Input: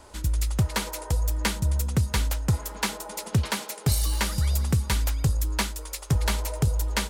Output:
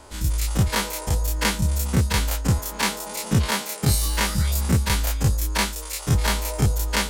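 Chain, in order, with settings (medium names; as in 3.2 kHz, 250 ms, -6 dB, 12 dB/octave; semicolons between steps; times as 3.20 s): every event in the spectrogram widened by 60 ms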